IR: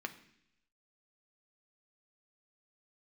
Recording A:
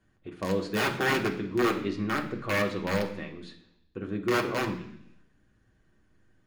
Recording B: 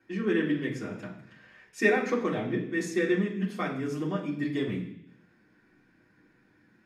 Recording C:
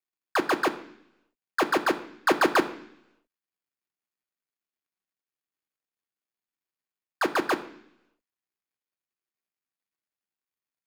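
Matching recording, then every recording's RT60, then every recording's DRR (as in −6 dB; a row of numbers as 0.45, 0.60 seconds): C; 0.75, 0.70, 0.75 seconds; 0.5, −6.5, 6.0 decibels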